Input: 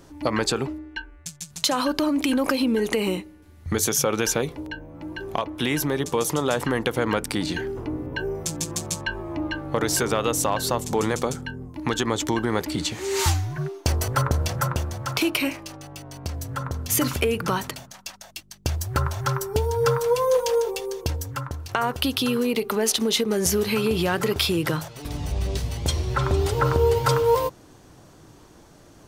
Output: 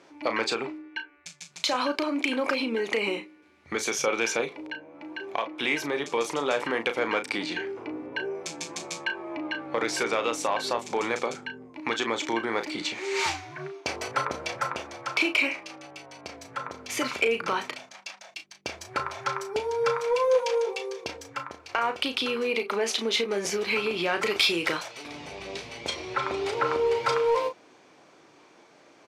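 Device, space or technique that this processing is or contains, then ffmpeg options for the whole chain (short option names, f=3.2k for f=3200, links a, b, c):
intercom: -filter_complex "[0:a]asettb=1/sr,asplit=3[a][b][c];[a]atrim=end=24.224[d];[b]atrim=start=24.22:end=25.03,asetpts=PTS-STARTPTS,afade=t=in:d=0.004:c=qsin,afade=t=out:st=0.806:d=0.004:c=qsin,highshelf=f=2.9k:g=8[e];[c]atrim=start=25.026[f];[d][e]acrossfade=d=0.004:c1=hsin:c2=qsin[g];[g][f]acrossfade=d=0.004:c1=qsin:c2=hsin,highpass=360,lowpass=5k,equalizer=f=2.3k:t=o:w=0.25:g=10,asoftclip=type=tanh:threshold=-10.5dB,asplit=2[h][i];[i]adelay=35,volume=-8.5dB[j];[h][j]amix=inputs=2:normalize=0,volume=-2dB"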